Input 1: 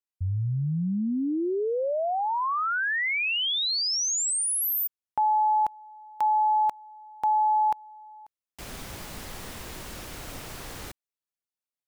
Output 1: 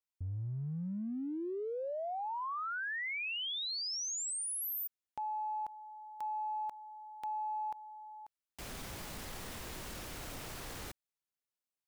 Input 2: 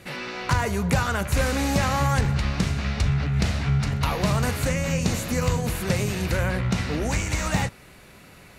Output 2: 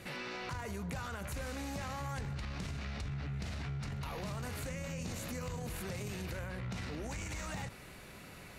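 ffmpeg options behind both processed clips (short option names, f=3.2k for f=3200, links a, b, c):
-af "acompressor=threshold=-34dB:ratio=6:attack=0.36:release=28:knee=6:detection=rms,volume=-3dB"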